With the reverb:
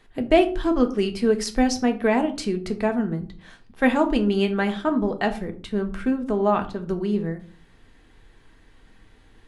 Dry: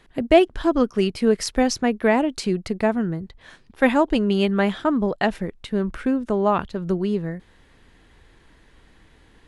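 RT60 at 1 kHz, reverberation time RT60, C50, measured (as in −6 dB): 0.35 s, 0.40 s, 14.0 dB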